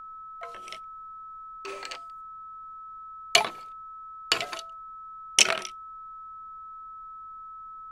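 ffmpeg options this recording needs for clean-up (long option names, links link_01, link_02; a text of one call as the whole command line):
ffmpeg -i in.wav -af "bandreject=frequency=1300:width=30,agate=range=-21dB:threshold=-35dB" out.wav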